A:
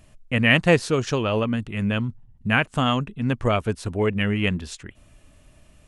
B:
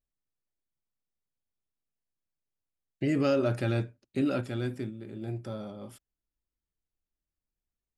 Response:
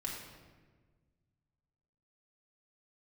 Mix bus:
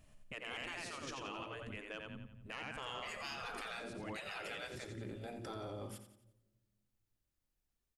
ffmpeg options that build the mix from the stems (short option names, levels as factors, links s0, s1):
-filter_complex "[0:a]bandreject=f=360:w=12,volume=0.251,asplit=3[s0][s1][s2];[s1]volume=0.106[s3];[s2]volume=0.596[s4];[1:a]volume=1.33,asplit=4[s5][s6][s7][s8];[s6]volume=0.0668[s9];[s7]volume=0.282[s10];[s8]apad=whole_len=258903[s11];[s0][s11]sidechaincompress=threshold=0.0112:ratio=8:attack=16:release=413[s12];[2:a]atrim=start_sample=2205[s13];[s3][s9]amix=inputs=2:normalize=0[s14];[s14][s13]afir=irnorm=-1:irlink=0[s15];[s4][s10]amix=inputs=2:normalize=0,aecho=0:1:88|176|264|352|440|528:1|0.41|0.168|0.0689|0.0283|0.0116[s16];[s12][s5][s15][s16]amix=inputs=4:normalize=0,afftfilt=real='re*lt(hypot(re,im),0.0794)':imag='im*lt(hypot(re,im),0.0794)':win_size=1024:overlap=0.75,asoftclip=type=tanh:threshold=0.0422,alimiter=level_in=3.55:limit=0.0631:level=0:latency=1:release=482,volume=0.282"